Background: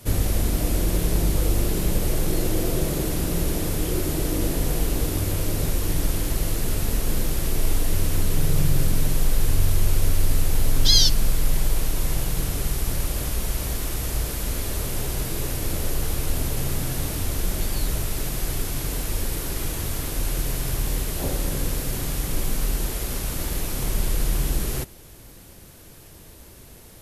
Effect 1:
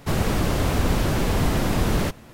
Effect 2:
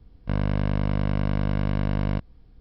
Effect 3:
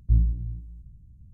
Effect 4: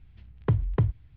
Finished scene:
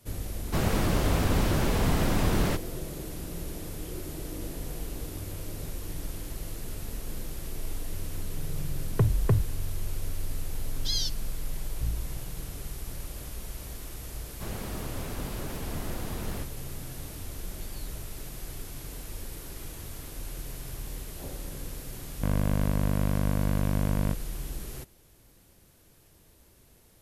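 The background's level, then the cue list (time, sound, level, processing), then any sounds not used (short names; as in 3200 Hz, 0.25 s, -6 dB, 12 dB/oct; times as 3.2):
background -13 dB
0.46 add 1 -4 dB
8.51 add 4 -1.5 dB + sample leveller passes 1
11.71 add 3 -12 dB
14.34 add 1 -15 dB + record warp 78 rpm, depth 160 cents
21.94 add 2 -2.5 dB + Wiener smoothing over 25 samples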